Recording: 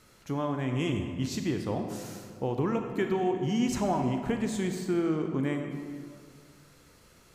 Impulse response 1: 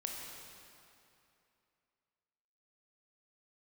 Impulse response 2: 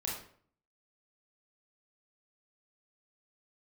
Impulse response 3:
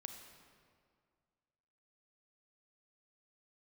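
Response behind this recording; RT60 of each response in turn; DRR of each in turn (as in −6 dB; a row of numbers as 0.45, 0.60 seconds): 3; 2.7, 0.55, 2.1 seconds; −0.5, −4.0, 5.0 decibels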